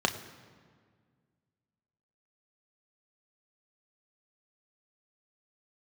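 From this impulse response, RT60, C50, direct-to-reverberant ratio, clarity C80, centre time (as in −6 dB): 1.8 s, 12.0 dB, 4.5 dB, 13.0 dB, 16 ms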